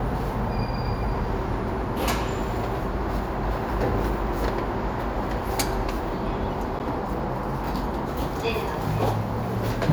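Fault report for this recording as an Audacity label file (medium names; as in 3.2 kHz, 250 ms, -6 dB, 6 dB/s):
6.790000	6.800000	dropout 9.3 ms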